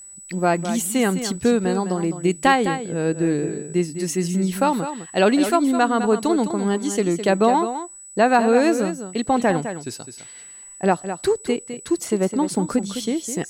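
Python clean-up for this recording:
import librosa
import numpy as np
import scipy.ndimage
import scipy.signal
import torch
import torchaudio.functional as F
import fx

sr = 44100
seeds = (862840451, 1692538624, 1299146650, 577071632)

y = fx.fix_declip(x, sr, threshold_db=-6.0)
y = fx.notch(y, sr, hz=7900.0, q=30.0)
y = fx.fix_echo_inverse(y, sr, delay_ms=208, level_db=-10.0)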